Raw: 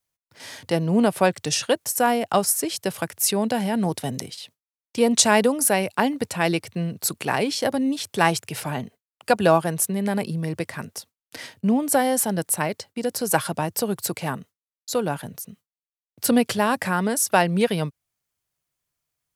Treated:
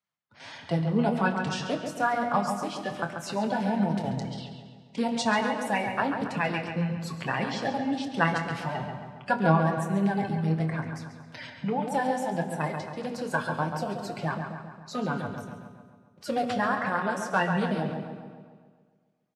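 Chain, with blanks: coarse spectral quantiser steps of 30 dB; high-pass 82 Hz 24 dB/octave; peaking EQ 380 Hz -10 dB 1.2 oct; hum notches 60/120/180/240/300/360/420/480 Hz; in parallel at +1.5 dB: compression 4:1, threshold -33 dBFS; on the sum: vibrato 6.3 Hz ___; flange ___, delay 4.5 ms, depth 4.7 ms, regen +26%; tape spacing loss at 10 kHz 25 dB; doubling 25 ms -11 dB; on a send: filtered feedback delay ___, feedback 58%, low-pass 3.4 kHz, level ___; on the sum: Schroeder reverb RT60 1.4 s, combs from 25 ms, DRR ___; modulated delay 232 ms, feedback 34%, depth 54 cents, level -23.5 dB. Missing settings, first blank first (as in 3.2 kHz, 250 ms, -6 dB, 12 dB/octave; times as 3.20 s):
8.2 cents, 1.6 Hz, 137 ms, -6 dB, 12 dB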